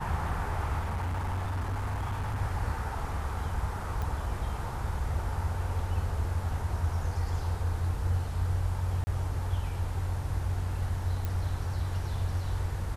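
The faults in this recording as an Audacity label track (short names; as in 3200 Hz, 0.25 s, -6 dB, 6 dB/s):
0.790000	2.420000	clipped -28.5 dBFS
4.020000	4.020000	pop
9.040000	9.070000	gap 30 ms
11.250000	11.250000	pop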